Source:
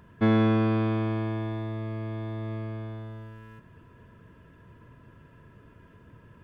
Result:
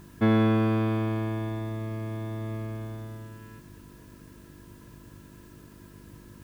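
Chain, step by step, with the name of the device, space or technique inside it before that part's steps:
video cassette with head-switching buzz (hum with harmonics 50 Hz, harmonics 7, −51 dBFS −1 dB per octave; white noise bed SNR 31 dB)

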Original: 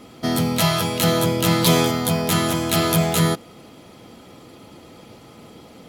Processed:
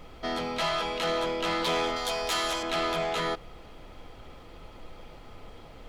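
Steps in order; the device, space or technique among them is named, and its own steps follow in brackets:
0:01.96–0:02.63: bass and treble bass −14 dB, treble +13 dB
aircraft cabin announcement (band-pass filter 460–3,500 Hz; soft clipping −19 dBFS, distortion −15 dB; brown noise bed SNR 14 dB)
level −3 dB

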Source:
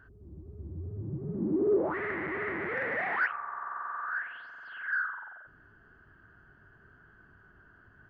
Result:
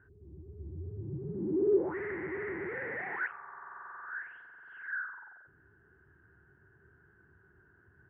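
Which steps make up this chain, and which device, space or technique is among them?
bass cabinet (loudspeaker in its box 71–2,200 Hz, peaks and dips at 75 Hz +7 dB, 130 Hz +3 dB, 240 Hz −5 dB, 380 Hz +6 dB, 640 Hz −9 dB, 1,200 Hz −8 dB)
level −4 dB

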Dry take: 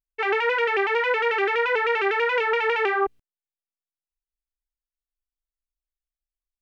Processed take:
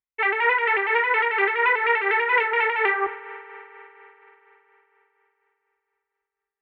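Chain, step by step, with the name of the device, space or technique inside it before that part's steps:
combo amplifier with spring reverb and tremolo (spring reverb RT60 3.9 s, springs 45 ms, chirp 20 ms, DRR 13 dB; amplitude tremolo 4.2 Hz, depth 48%; loudspeaker in its box 82–3,500 Hz, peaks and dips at 90 Hz −10 dB, 260 Hz −7 dB, 590 Hz −7 dB, 1,000 Hz +8 dB, 2,000 Hz +9 dB)

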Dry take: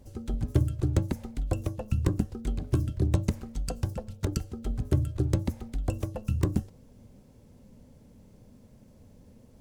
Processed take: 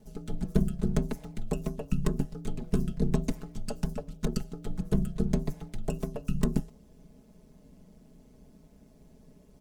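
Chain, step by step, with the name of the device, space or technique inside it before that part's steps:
ring-modulated robot voice (ring modulation 64 Hz; comb filter 4.7 ms, depth 75%)

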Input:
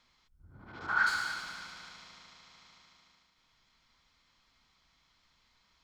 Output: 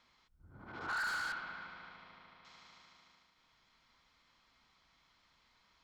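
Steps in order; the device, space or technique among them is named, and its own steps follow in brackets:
0:01.32–0:02.45: high-frequency loss of the air 340 metres
tube preamp driven hard (tube saturation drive 36 dB, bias 0.25; low-shelf EQ 190 Hz −6.5 dB; high-shelf EQ 3,300 Hz −7.5 dB)
level +3 dB

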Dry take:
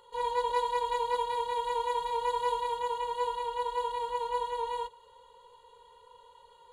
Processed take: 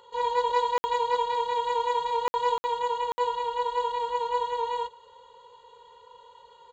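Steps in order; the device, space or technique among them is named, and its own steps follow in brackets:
call with lost packets (high-pass filter 100 Hz 6 dB per octave; downsampling to 16,000 Hz; dropped packets of 60 ms random)
level +4.5 dB

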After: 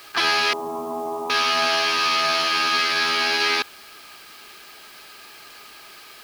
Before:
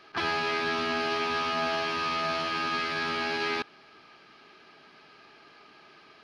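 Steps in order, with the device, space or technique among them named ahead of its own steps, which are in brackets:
0:00.53–0:01.30: Chebyshev low-pass filter 1,100 Hz, order 6
turntable without a phono preamp (RIAA equalisation recording; white noise bed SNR 26 dB)
level +7 dB

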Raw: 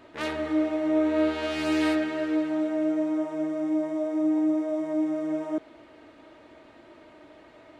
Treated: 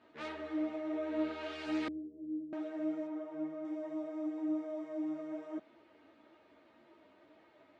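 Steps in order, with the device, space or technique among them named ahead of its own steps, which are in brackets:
high-pass filter 110 Hz 12 dB per octave
string-machine ensemble chorus (string-ensemble chorus; low-pass filter 5,500 Hz 12 dB per octave)
0:01.88–0:02.53: inverse Chebyshev low-pass filter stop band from 1,500 Hz, stop band 70 dB
0:03.07–0:03.65: high-shelf EQ 4,000 Hz −11.5 dB
level −8.5 dB

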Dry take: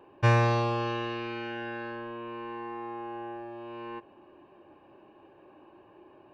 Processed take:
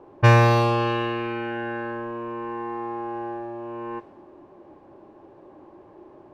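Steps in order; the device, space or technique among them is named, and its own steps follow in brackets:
cassette deck with a dynamic noise filter (white noise bed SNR 26 dB; low-pass that shuts in the quiet parts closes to 880 Hz, open at −21.5 dBFS)
level +7.5 dB

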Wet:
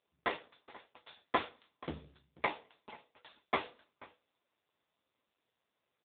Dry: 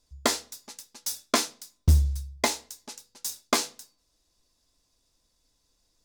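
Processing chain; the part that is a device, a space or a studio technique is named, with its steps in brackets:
satellite phone (band-pass filter 340–3,100 Hz; single-tap delay 487 ms −22.5 dB; level +1 dB; AMR narrowband 5.9 kbit/s 8,000 Hz)

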